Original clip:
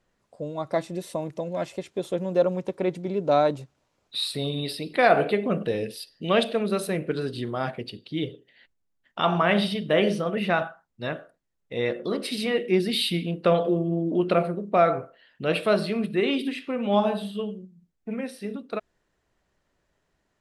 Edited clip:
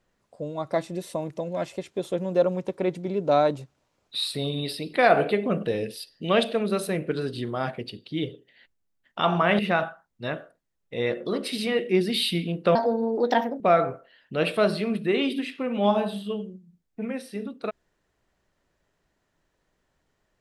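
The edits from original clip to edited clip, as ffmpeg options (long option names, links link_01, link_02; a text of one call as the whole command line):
ffmpeg -i in.wav -filter_complex "[0:a]asplit=4[link_01][link_02][link_03][link_04];[link_01]atrim=end=9.592[link_05];[link_02]atrim=start=10.378:end=13.544[link_06];[link_03]atrim=start=13.54:end=14.69,asetpts=PTS-STARTPTS,asetrate=59535,aresample=44100[link_07];[link_04]atrim=start=14.686[link_08];[link_05][link_06]acrossfade=duration=0.004:curve1=hsin:curve2=hsin[link_09];[link_09][link_07]acrossfade=duration=0.004:curve1=hsin:curve2=hsin[link_10];[link_10][link_08]acrossfade=duration=0.004:curve1=hsin:curve2=hsin" out.wav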